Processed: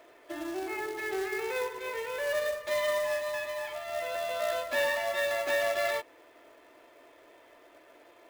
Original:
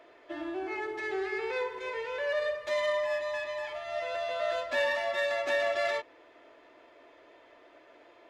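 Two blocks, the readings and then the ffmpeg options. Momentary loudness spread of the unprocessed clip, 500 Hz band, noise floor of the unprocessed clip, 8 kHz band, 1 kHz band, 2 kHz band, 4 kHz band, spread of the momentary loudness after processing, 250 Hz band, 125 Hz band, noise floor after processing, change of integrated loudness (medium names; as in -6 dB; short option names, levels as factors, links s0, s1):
8 LU, 0.0 dB, -58 dBFS, +9.5 dB, 0.0 dB, 0.0 dB, +1.0 dB, 8 LU, 0.0 dB, no reading, -58 dBFS, +0.5 dB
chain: -af "acrusher=bits=3:mode=log:mix=0:aa=0.000001"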